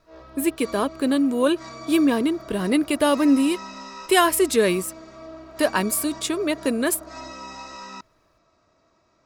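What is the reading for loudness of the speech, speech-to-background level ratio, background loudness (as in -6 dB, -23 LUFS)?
-22.0 LUFS, 17.5 dB, -39.5 LUFS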